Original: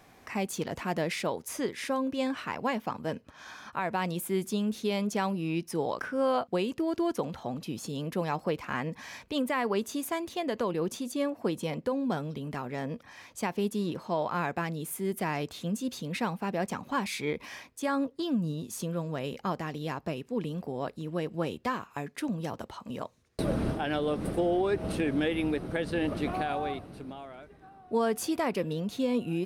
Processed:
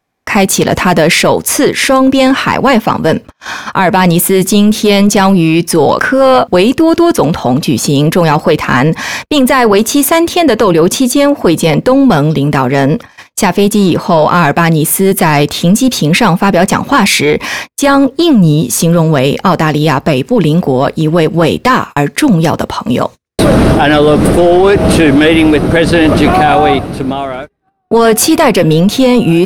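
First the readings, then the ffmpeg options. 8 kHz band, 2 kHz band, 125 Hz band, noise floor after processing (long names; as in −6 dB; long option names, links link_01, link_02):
+26.5 dB, +24.0 dB, +24.5 dB, −42 dBFS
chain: -af "acontrast=33,agate=range=-39dB:threshold=-41dB:ratio=16:detection=peak,apsyclip=23.5dB,volume=-2dB"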